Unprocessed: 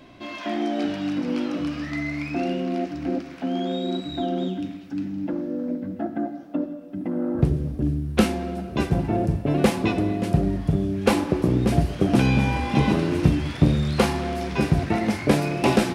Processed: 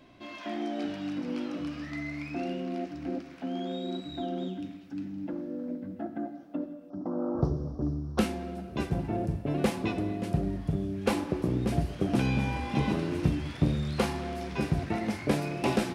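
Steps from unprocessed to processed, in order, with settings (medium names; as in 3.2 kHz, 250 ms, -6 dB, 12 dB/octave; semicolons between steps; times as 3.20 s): 6.90–8.19 s: FFT filter 220 Hz 0 dB, 1.2 kHz +11 dB, 2.3 kHz -22 dB, 5.6 kHz +9 dB, 8.3 kHz -19 dB, 12 kHz -12 dB; trim -8 dB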